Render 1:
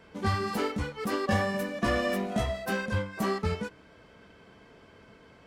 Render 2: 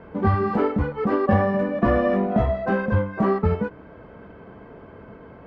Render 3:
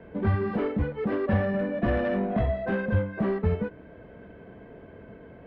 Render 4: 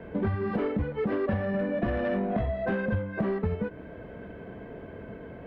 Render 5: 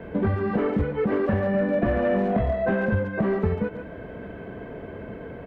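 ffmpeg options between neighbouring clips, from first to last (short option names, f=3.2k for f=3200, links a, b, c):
-filter_complex "[0:a]lowpass=1.2k,asplit=2[a][b];[b]acompressor=threshold=-36dB:ratio=6,volume=-1.5dB[c];[a][c]amix=inputs=2:normalize=0,volume=7dB"
-filter_complex "[0:a]superequalizer=9b=0.501:10b=0.398:14b=0.501:15b=0.316,acrossover=split=170|1700[a][b][c];[b]asoftclip=type=tanh:threshold=-20dB[d];[a][d][c]amix=inputs=3:normalize=0,volume=-3dB"
-af "acompressor=threshold=-30dB:ratio=6,volume=4.5dB"
-filter_complex "[0:a]asplit=2[a][b];[b]adelay=140,highpass=300,lowpass=3.4k,asoftclip=type=hard:threshold=-25.5dB,volume=-7dB[c];[a][c]amix=inputs=2:normalize=0,acrossover=split=2700[d][e];[e]acompressor=threshold=-58dB:ratio=4:attack=1:release=60[f];[d][f]amix=inputs=2:normalize=0,volume=4.5dB"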